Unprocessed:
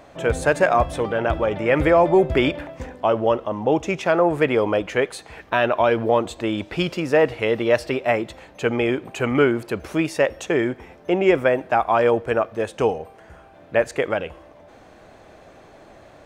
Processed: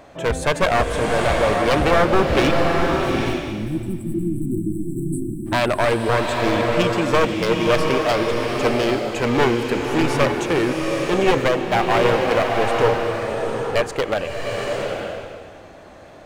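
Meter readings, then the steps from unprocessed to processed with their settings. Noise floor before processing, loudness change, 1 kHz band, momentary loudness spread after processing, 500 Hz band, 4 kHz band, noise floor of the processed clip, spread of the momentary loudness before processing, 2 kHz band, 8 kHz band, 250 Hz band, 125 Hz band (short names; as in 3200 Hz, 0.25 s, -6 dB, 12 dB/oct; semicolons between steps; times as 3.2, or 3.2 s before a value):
-48 dBFS, +1.0 dB, +2.5 dB, 9 LU, 0.0 dB, +6.5 dB, -41 dBFS, 8 LU, +2.0 dB, +6.0 dB, +2.0 dB, +4.5 dB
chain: one-sided fold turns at -16.5 dBFS; spectral delete 2.6–5.46, 370–7600 Hz; bloom reverb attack 0.85 s, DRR 1 dB; gain +1.5 dB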